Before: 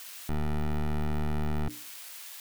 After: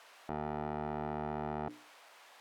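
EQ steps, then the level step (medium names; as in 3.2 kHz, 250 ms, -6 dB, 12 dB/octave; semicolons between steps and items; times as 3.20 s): band-pass filter 680 Hz, Q 1.2; +3.5 dB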